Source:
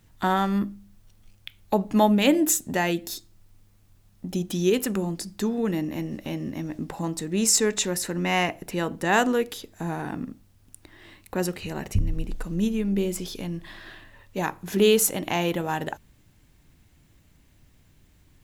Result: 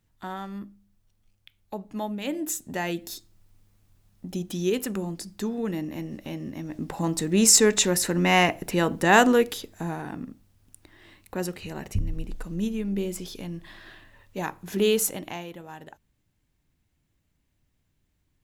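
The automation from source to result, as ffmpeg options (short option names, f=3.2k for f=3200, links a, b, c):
-af "volume=4dB,afade=t=in:st=2.21:d=0.82:silence=0.354813,afade=t=in:st=6.65:d=0.55:silence=0.421697,afade=t=out:st=9.4:d=0.63:silence=0.421697,afade=t=out:st=15.06:d=0.4:silence=0.281838"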